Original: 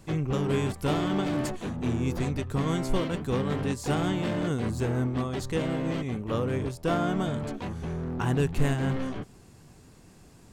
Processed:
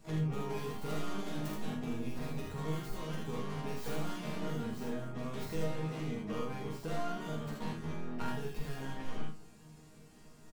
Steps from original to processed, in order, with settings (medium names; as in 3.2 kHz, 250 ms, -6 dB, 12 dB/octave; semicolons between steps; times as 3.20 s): tracing distortion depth 0.32 ms; compression 16:1, threshold -29 dBFS, peak gain reduction 12 dB; harmony voices +12 st -13 dB; chord resonator D#3 sus4, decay 0.27 s; early reflections 45 ms -3 dB, 78 ms -3 dB; trim +8 dB